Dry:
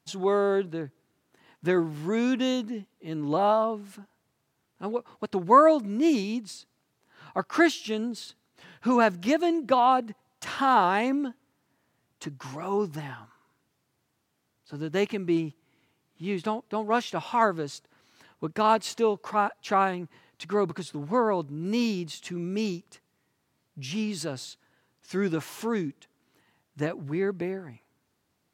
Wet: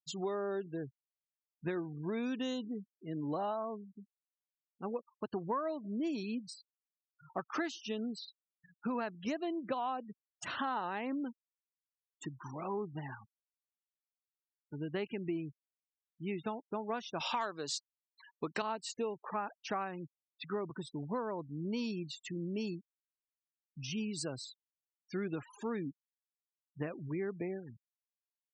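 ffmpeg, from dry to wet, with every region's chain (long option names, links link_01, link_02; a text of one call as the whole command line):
ffmpeg -i in.wav -filter_complex "[0:a]asettb=1/sr,asplit=3[link_01][link_02][link_03];[link_01]atrim=end=17.204[link_04];[link_02]atrim=start=17.2:end=18.62,asetpts=PTS-STARTPTS,afade=type=in:duration=0.004:curve=qsin,afade=type=out:start_time=1.416:duration=0.004:curve=qsin,highpass=frequency=340:poles=1,equalizer=frequency=4200:width=0.59:gain=6.5,acontrast=69[link_05];[link_03]atrim=start=18.616[link_06];[link_04][link_05]acrossfade=duration=0.004:curve1=hsin:curve2=qsin[link_07];[link_07][link_06]acrossfade=duration=0.004:curve1=qsin:curve2=hsin,afftfilt=real='re*gte(hypot(re,im),0.0158)':imag='im*gte(hypot(re,im),0.0158)':win_size=1024:overlap=0.75,highshelf=frequency=6900:gain=7,acompressor=threshold=-28dB:ratio=6,volume=-5.5dB" out.wav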